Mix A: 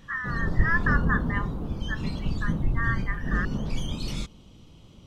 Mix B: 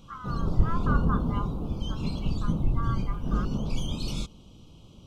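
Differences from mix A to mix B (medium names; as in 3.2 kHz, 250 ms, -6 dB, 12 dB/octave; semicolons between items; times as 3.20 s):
speech: add brick-wall FIR low-pass 3.6 kHz; master: add Butterworth band-stop 1.8 kHz, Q 1.7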